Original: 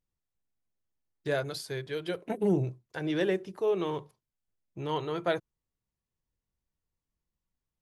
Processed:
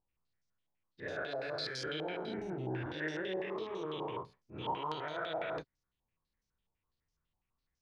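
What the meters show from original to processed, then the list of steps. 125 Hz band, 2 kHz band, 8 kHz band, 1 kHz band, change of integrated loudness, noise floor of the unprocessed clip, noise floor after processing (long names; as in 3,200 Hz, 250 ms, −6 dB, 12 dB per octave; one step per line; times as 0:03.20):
−9.0 dB, −1.5 dB, can't be measured, −1.5 dB, −7.0 dB, below −85 dBFS, below −85 dBFS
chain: every bin's largest magnitude spread in time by 480 ms
reversed playback
downward compressor 6 to 1, threshold −30 dBFS, peak gain reduction 12 dB
reversed playback
brickwall limiter −25.5 dBFS, peak gain reduction 5 dB
backwards echo 32 ms −5 dB
low-pass on a step sequencer 12 Hz 840–5,700 Hz
level −8 dB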